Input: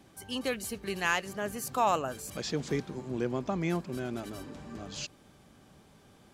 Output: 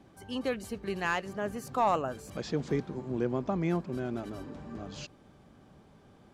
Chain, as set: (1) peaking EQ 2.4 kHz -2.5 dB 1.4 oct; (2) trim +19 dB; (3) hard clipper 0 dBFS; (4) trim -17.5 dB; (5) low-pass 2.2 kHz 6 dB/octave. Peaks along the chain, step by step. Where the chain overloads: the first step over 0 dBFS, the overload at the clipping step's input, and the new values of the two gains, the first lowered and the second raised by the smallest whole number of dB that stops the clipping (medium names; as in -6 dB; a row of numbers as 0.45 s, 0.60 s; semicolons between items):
-15.0 dBFS, +4.0 dBFS, 0.0 dBFS, -17.5 dBFS, -17.5 dBFS; step 2, 4.0 dB; step 2 +15 dB, step 4 -13.5 dB